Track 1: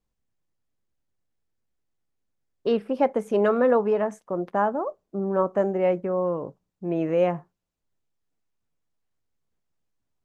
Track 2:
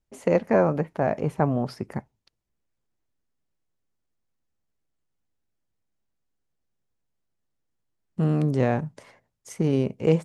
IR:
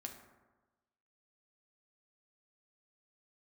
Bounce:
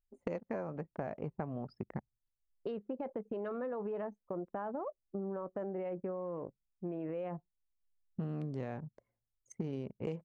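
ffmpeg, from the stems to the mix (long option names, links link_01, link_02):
-filter_complex "[0:a]alimiter=limit=-20.5dB:level=0:latency=1:release=17,volume=-5.5dB[link_01];[1:a]volume=-4dB[link_02];[link_01][link_02]amix=inputs=2:normalize=0,anlmdn=0.631,acompressor=threshold=-35dB:ratio=12"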